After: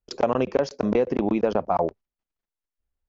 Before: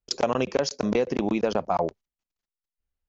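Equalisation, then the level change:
parametric band 160 Hz −2.5 dB 0.77 octaves
high-shelf EQ 2,200 Hz −8.5 dB
high-shelf EQ 6,000 Hz −11 dB
+3.0 dB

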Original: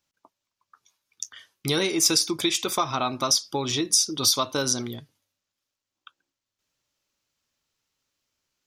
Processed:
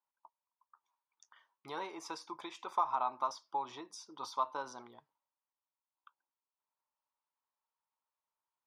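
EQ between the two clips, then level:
resonant band-pass 940 Hz, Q 5.8
+1.0 dB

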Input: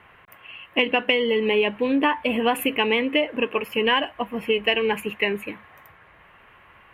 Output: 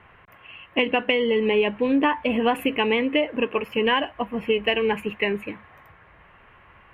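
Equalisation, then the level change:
low-pass filter 3,000 Hz 6 dB per octave
low-shelf EQ 120 Hz +6.5 dB
0.0 dB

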